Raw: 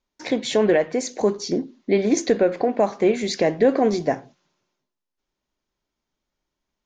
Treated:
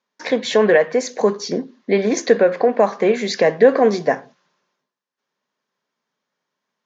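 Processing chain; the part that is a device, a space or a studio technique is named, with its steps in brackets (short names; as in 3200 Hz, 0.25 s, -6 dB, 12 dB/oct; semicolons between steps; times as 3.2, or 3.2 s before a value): television speaker (speaker cabinet 160–6800 Hz, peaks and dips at 320 Hz -9 dB, 480 Hz +5 dB, 1100 Hz +6 dB, 1700 Hz +7 dB); gain +3 dB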